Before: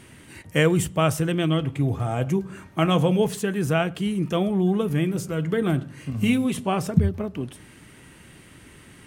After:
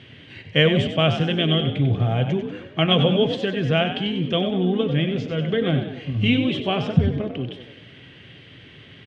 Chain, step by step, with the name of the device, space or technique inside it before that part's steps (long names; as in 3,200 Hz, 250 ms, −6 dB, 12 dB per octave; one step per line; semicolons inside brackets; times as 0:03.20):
0:04.88–0:05.58: low-pass filter 7,200 Hz 24 dB per octave
frequency-shifting delay pedal into a guitar cabinet (echo with shifted repeats 95 ms, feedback 46%, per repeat +56 Hz, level −9 dB; loudspeaker in its box 100–4,100 Hz, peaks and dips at 110 Hz +7 dB, 200 Hz −5 dB, 330 Hz −5 dB, 930 Hz −9 dB, 1,300 Hz −6 dB, 3,200 Hz +9 dB)
level +3 dB